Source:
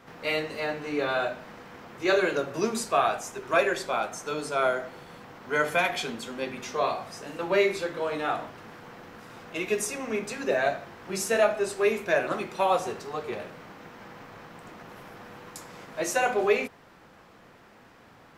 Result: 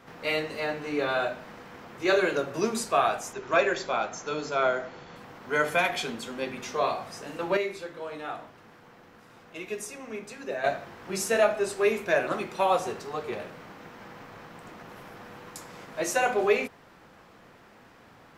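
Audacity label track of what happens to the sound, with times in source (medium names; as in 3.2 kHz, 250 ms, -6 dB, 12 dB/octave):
3.330000	5.160000	brick-wall FIR low-pass 7.5 kHz
7.570000	10.640000	gain -7.5 dB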